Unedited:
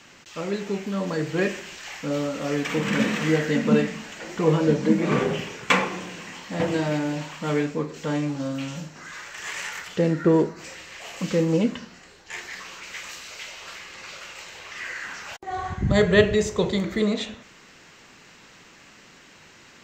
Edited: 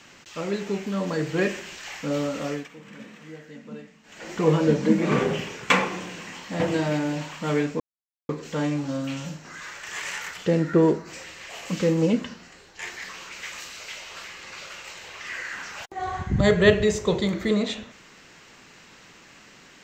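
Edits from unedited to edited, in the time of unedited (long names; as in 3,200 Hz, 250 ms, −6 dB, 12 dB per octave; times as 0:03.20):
0:02.41–0:04.31: duck −20.5 dB, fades 0.28 s
0:07.80: splice in silence 0.49 s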